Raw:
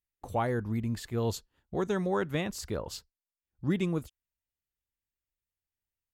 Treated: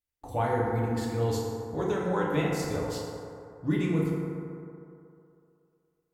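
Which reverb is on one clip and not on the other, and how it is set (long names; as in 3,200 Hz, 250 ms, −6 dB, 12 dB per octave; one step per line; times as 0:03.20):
feedback delay network reverb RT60 2.7 s, low-frequency decay 0.8×, high-frequency decay 0.35×, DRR −5 dB
level −3 dB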